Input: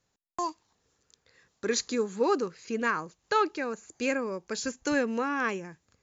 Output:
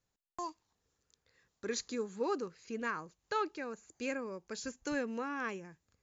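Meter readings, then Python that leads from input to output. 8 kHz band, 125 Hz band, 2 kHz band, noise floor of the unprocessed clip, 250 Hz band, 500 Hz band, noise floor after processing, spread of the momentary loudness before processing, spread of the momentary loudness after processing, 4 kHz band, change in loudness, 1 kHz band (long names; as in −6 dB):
can't be measured, −8.0 dB, −9.0 dB, −77 dBFS, −8.5 dB, −9.0 dB, −85 dBFS, 8 LU, 8 LU, −9.0 dB, −9.0 dB, −9.0 dB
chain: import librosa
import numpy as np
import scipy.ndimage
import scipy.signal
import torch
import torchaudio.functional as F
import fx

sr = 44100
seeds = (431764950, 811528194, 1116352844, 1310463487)

y = fx.low_shelf(x, sr, hz=71.0, db=8.5)
y = y * 10.0 ** (-9.0 / 20.0)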